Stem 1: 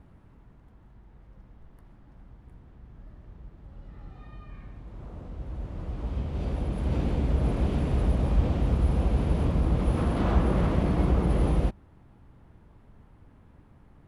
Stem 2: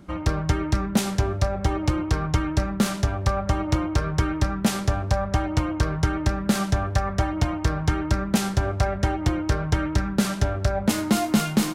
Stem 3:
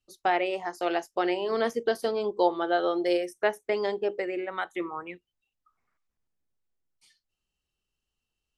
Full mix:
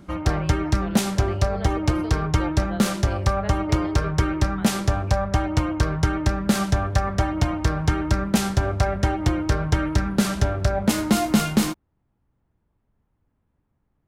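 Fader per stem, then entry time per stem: -17.0 dB, +1.5 dB, -10.5 dB; 0.00 s, 0.00 s, 0.00 s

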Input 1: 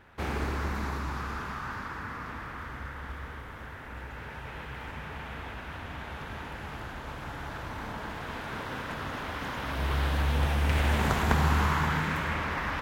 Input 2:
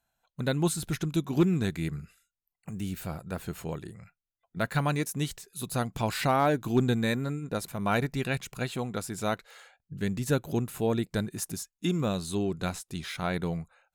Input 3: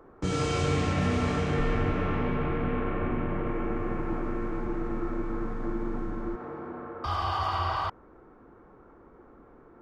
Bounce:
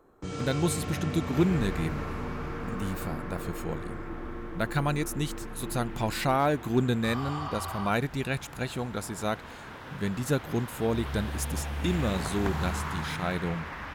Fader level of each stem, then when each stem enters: -7.0 dB, -0.5 dB, -7.5 dB; 1.15 s, 0.00 s, 0.00 s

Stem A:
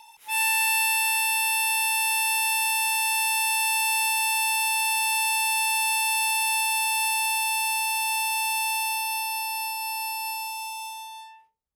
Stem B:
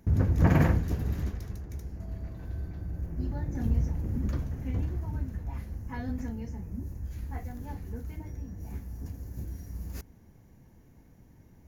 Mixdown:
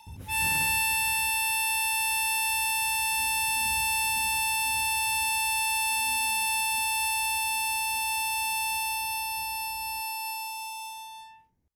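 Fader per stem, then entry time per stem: -3.0 dB, -19.0 dB; 0.00 s, 0.00 s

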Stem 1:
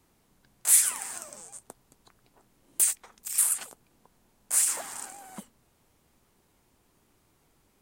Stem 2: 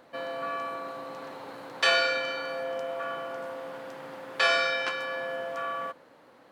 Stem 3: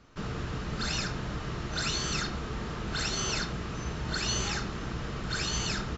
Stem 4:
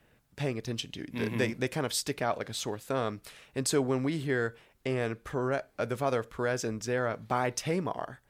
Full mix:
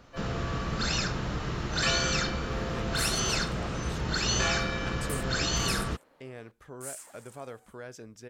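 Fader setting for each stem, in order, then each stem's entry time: -17.5 dB, -7.5 dB, +2.5 dB, -13.0 dB; 2.30 s, 0.00 s, 0.00 s, 1.35 s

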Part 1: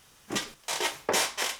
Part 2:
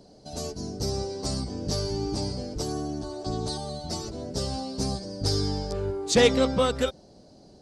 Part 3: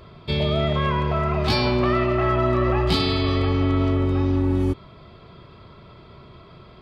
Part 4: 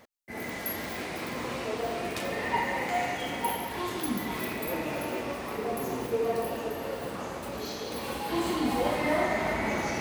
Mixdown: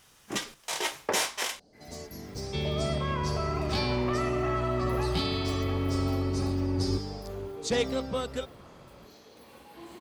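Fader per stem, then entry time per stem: -1.5 dB, -8.5 dB, -8.5 dB, -17.5 dB; 0.00 s, 1.55 s, 2.25 s, 1.45 s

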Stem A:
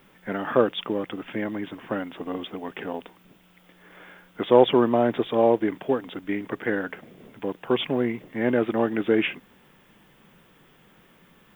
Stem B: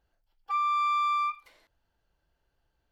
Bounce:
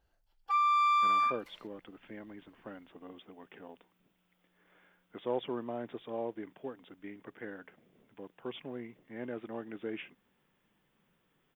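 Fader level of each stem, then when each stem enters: -18.0 dB, 0.0 dB; 0.75 s, 0.00 s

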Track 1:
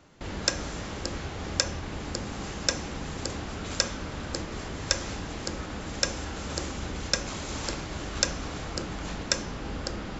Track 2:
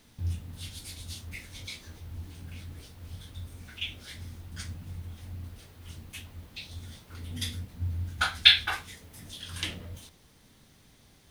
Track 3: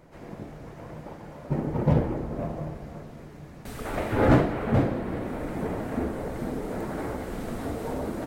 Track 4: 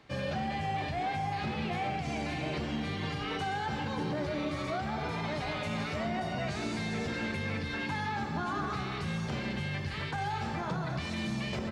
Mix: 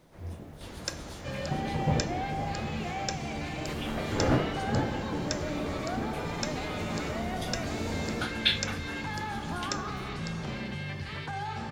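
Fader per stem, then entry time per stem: -9.0 dB, -8.5 dB, -6.5 dB, -1.5 dB; 0.40 s, 0.00 s, 0.00 s, 1.15 s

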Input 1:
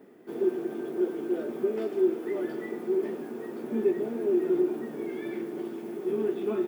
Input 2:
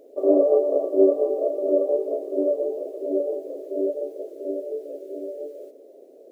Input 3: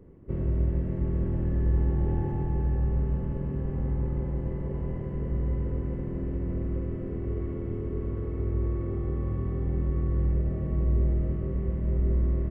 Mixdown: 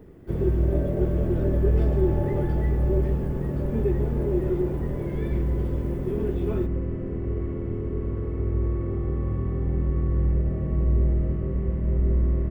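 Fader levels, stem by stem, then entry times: -1.5 dB, -14.5 dB, +3.0 dB; 0.00 s, 0.45 s, 0.00 s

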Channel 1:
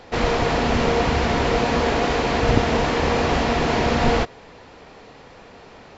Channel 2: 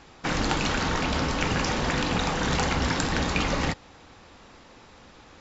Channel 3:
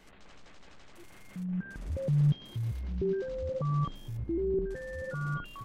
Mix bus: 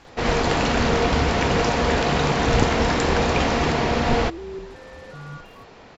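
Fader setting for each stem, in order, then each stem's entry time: -1.5 dB, -0.5 dB, -4.0 dB; 0.05 s, 0.00 s, 0.00 s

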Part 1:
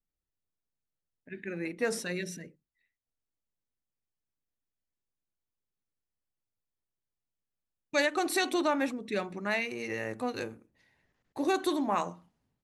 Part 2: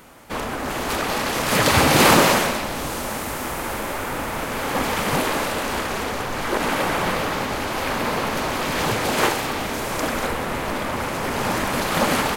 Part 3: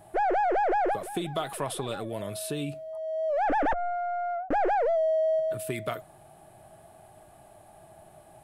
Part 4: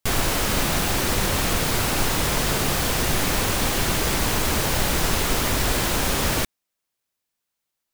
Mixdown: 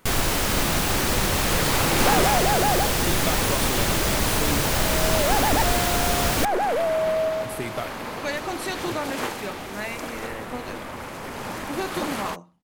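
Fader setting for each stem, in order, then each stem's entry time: -2.0 dB, -9.5 dB, +1.5 dB, -0.5 dB; 0.30 s, 0.00 s, 1.90 s, 0.00 s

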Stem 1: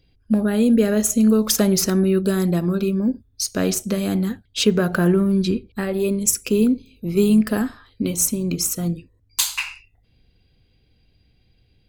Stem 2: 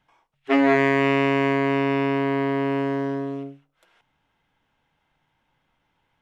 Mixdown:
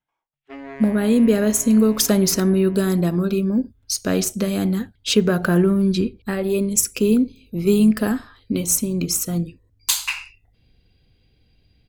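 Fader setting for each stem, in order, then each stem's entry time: +0.5 dB, -18.5 dB; 0.50 s, 0.00 s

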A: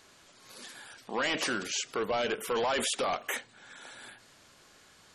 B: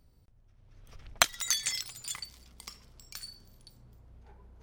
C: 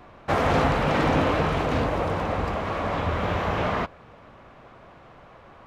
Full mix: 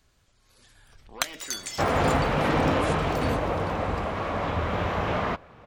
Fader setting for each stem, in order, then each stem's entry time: -11.5 dB, -4.0 dB, -1.5 dB; 0.00 s, 0.00 s, 1.50 s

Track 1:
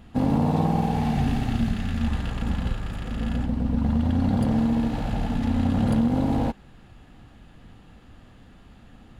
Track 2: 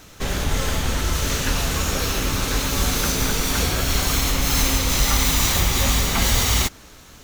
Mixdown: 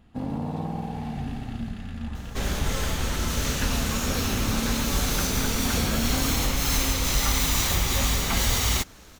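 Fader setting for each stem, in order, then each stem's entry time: -8.5 dB, -4.5 dB; 0.00 s, 2.15 s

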